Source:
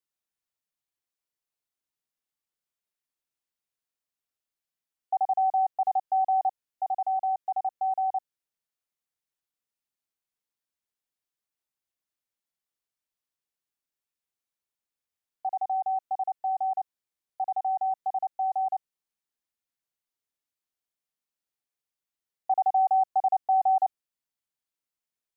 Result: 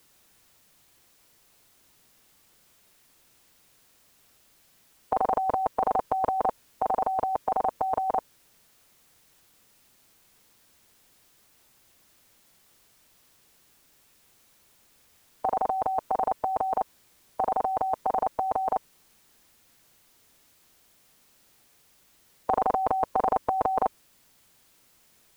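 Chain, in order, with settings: low shelf 440 Hz +5.5 dB; spectral compressor 4:1; gain +8.5 dB

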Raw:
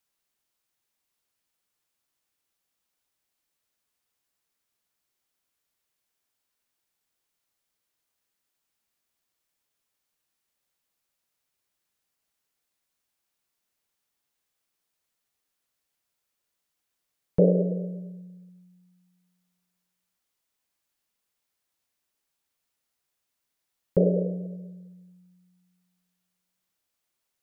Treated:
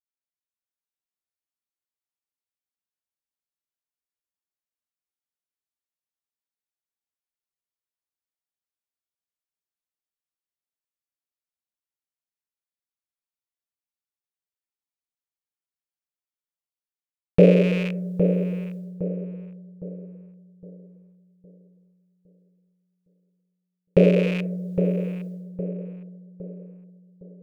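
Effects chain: rattling part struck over -33 dBFS, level -28 dBFS; expander -54 dBFS; AGC gain up to 15.5 dB; darkening echo 0.811 s, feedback 43%, low-pass 890 Hz, level -7.5 dB; on a send at -22 dB: reverb RT60 0.60 s, pre-delay 12 ms; on the sum: gain -1 dB

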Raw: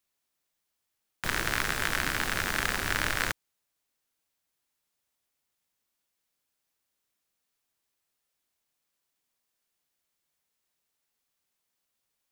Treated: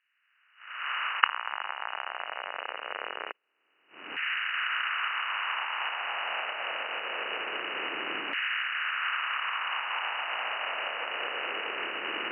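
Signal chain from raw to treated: per-bin compression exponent 0.4; recorder AGC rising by 30 dB/s; gate -31 dBFS, range -7 dB; bell 2300 Hz -10 dB 1.4 oct; sample leveller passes 3; inverted band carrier 2900 Hz; air absorption 270 m; LFO high-pass saw down 0.24 Hz 290–1800 Hz; gain -13.5 dB

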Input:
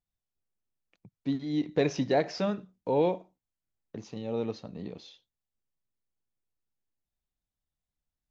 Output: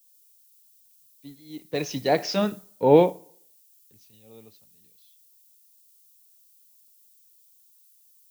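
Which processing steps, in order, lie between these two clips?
Doppler pass-by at 2.67, 9 m/s, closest 3.7 m; added noise violet -61 dBFS; on a send at -22 dB: reverb RT60 1.3 s, pre-delay 13 ms; on the sum: three-band expander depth 100%; gain +4 dB

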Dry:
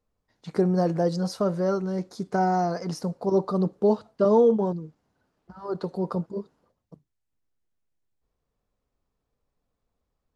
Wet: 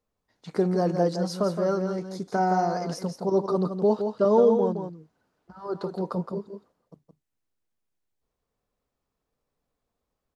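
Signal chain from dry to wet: low shelf 140 Hz -7 dB; on a send: echo 0.167 s -7 dB

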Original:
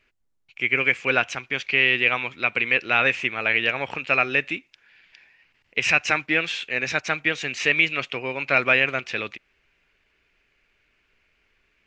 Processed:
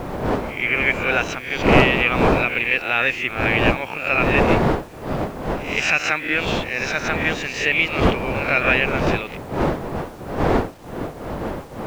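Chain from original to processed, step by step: spectral swells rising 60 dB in 0.50 s; wind noise 610 Hz -22 dBFS; requantised 8-bit, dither none; gain -1 dB

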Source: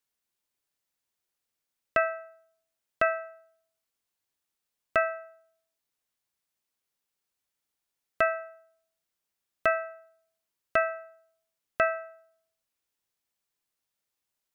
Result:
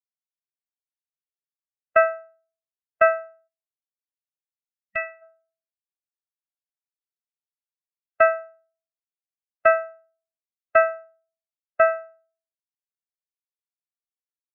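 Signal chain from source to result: 3.48–5.22 spectral gain 200–1900 Hz -10 dB; 11.04–11.88 high shelf 3600 Hz -7.5 dB; spectral expander 1.5:1; gain +6.5 dB

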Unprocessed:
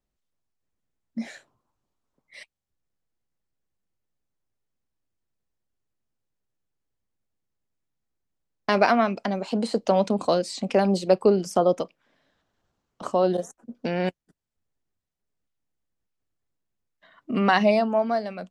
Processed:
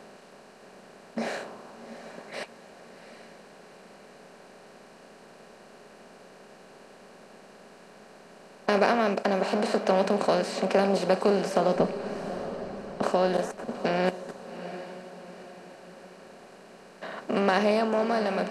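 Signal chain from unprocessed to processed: per-bin compression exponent 0.4; 11.75–13.02 RIAA curve playback; on a send: diffused feedback echo 0.769 s, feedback 43%, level -12 dB; on the sum: gain -8 dB

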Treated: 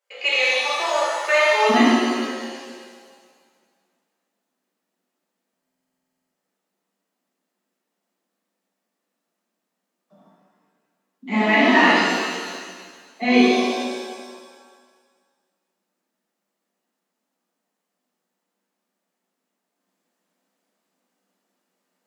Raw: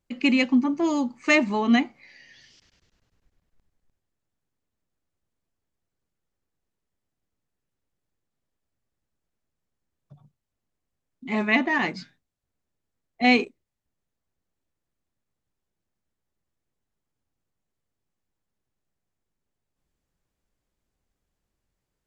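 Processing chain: rippled Chebyshev high-pass 400 Hz, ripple 3 dB, from 1.69 s 180 Hz; limiter -16 dBFS, peak gain reduction 9 dB; stuck buffer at 5.49/12.12, samples 2048, times 16; shimmer reverb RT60 1.7 s, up +7 st, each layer -8 dB, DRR -9 dB; gain +1.5 dB

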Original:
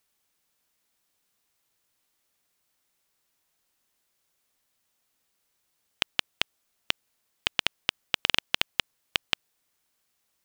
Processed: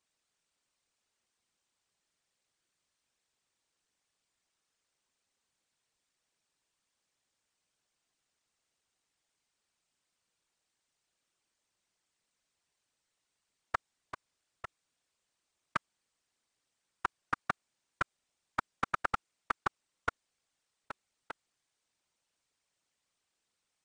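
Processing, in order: wide varispeed 0.438×; whisperiser; level quantiser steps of 11 dB; gain -7.5 dB

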